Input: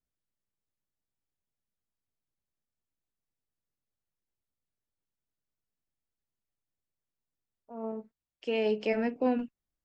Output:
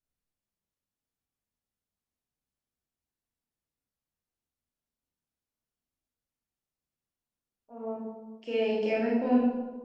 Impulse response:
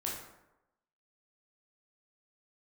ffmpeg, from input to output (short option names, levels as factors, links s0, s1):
-filter_complex "[1:a]atrim=start_sample=2205,asetrate=29988,aresample=44100[s0];[0:a][s0]afir=irnorm=-1:irlink=0,volume=0.631"